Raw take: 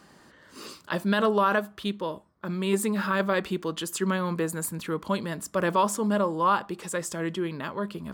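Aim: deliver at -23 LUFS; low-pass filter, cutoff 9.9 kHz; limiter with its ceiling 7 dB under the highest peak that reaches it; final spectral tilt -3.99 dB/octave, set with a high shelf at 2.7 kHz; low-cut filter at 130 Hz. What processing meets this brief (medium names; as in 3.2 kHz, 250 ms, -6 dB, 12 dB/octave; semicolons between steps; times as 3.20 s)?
high-pass 130 Hz; low-pass 9.9 kHz; treble shelf 2.7 kHz +5 dB; trim +6 dB; peak limiter -10.5 dBFS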